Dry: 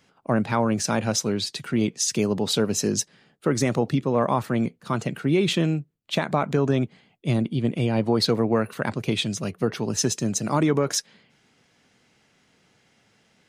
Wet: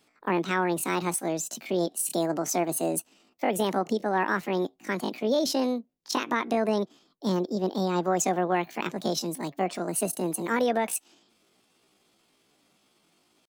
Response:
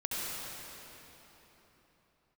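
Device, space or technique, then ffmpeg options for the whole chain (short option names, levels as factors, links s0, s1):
chipmunk voice: -af "asetrate=70004,aresample=44100,atempo=0.629961,volume=0.631"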